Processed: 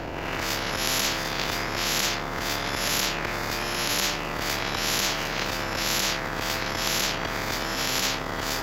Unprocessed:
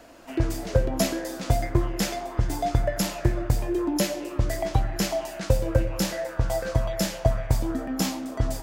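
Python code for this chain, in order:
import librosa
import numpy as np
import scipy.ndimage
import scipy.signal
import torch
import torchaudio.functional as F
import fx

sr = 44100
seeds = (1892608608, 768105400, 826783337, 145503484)

p1 = fx.spec_swells(x, sr, rise_s=1.06)
p2 = fx.low_shelf(p1, sr, hz=320.0, db=11.5)
p3 = fx.transient(p2, sr, attack_db=-11, sustain_db=5)
p4 = 10.0 ** (-23.5 / 20.0) * np.tanh(p3 / 10.0 ** (-23.5 / 20.0))
p5 = p3 + (p4 * 10.0 ** (-7.0 / 20.0))
p6 = np.convolve(p5, np.full(5, 1.0 / 5))[:len(p5)]
p7 = fx.spectral_comp(p6, sr, ratio=10.0)
y = p7 * 10.0 ** (-4.5 / 20.0)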